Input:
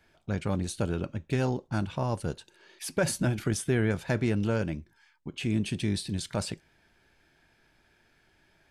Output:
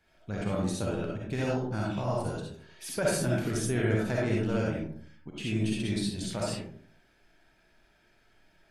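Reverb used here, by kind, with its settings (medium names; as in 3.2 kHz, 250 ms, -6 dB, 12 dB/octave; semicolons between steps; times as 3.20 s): algorithmic reverb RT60 0.6 s, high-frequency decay 0.4×, pre-delay 20 ms, DRR -4.5 dB; trim -5.5 dB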